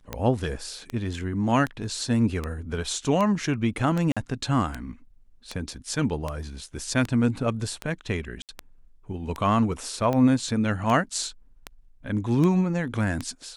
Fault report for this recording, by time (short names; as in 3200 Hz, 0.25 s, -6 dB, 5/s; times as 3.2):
tick 78 rpm -15 dBFS
4.12–4.17 gap 46 ms
8.42–8.49 gap 68 ms